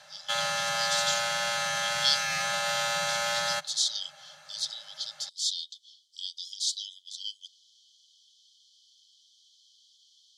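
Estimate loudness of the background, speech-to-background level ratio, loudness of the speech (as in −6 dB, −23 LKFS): −28.0 LKFS, −4.0 dB, −32.0 LKFS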